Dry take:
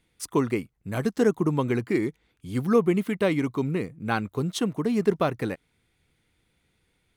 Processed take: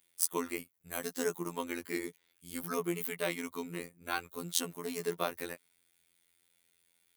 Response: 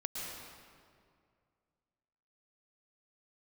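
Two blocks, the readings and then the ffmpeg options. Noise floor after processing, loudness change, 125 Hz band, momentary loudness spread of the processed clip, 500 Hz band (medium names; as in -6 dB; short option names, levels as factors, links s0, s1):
-75 dBFS, -10.5 dB, -19.0 dB, 9 LU, -12.0 dB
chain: -af "aemphasis=mode=production:type=riaa,afftfilt=real='hypot(re,im)*cos(PI*b)':imag='0':win_size=2048:overlap=0.75,volume=0.562"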